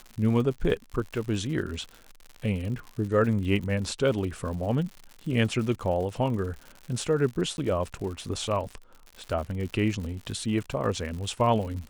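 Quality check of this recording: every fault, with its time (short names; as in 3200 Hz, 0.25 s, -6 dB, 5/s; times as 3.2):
crackle 110/s -35 dBFS
7.57–7.58 gap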